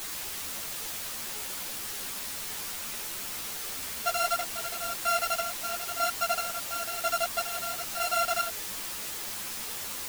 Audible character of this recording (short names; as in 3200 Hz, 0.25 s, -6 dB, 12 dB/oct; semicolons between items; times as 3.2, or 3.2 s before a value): a buzz of ramps at a fixed pitch in blocks of 32 samples; chopped level 1 Hz, depth 65%, duty 40%; a quantiser's noise floor 6-bit, dither triangular; a shimmering, thickened sound